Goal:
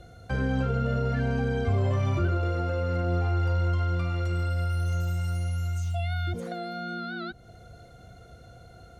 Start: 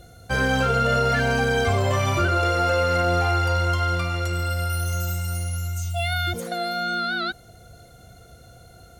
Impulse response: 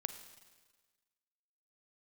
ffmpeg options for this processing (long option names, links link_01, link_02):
-filter_complex "[0:a]acrossover=split=380[link_01][link_02];[link_02]acompressor=threshold=-35dB:ratio=4[link_03];[link_01][link_03]amix=inputs=2:normalize=0,aemphasis=mode=reproduction:type=50fm,volume=-1.5dB"